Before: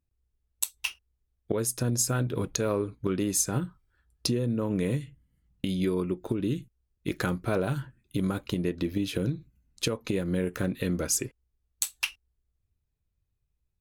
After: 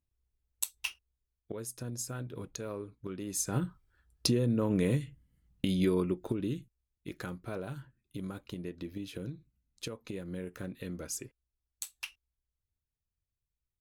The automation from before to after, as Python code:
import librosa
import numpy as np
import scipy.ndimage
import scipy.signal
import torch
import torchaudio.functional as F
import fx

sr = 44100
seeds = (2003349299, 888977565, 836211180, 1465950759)

y = fx.gain(x, sr, db=fx.line((0.87, -4.5), (1.51, -12.0), (3.22, -12.0), (3.65, -0.5), (5.97, -0.5), (7.11, -11.5)))